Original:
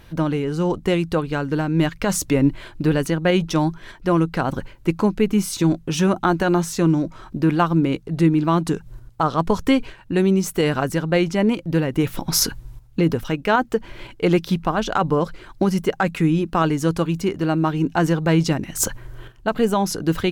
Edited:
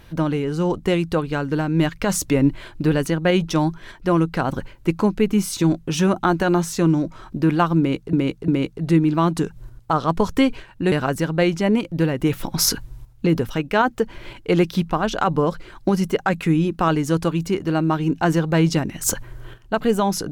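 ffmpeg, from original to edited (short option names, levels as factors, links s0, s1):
-filter_complex "[0:a]asplit=4[s0][s1][s2][s3];[s0]atrim=end=8.132[s4];[s1]atrim=start=7.778:end=8.132[s5];[s2]atrim=start=7.778:end=10.222[s6];[s3]atrim=start=10.658[s7];[s4][s5]acrossfade=d=0.004:c1=hsin:c2=hsin[s8];[s8][s6]acrossfade=d=0.004:c1=hsin:c2=hsin[s9];[s9][s7]acrossfade=d=0.004:c1=hsin:c2=hsin"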